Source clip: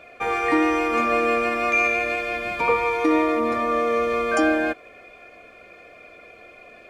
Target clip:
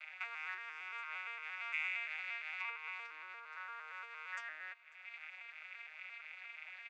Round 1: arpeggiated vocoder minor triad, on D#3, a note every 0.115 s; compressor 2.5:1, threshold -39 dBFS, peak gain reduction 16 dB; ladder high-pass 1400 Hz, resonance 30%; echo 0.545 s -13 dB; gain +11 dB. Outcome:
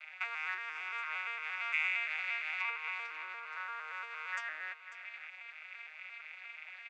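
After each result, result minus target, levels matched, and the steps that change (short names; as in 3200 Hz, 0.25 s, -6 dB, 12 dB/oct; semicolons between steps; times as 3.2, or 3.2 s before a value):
echo-to-direct +9.5 dB; compressor: peak gain reduction -5.5 dB
change: echo 0.545 s -22.5 dB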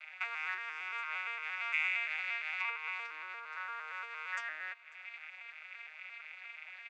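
compressor: peak gain reduction -5.5 dB
change: compressor 2.5:1, threshold -48.5 dBFS, peak gain reduction 22 dB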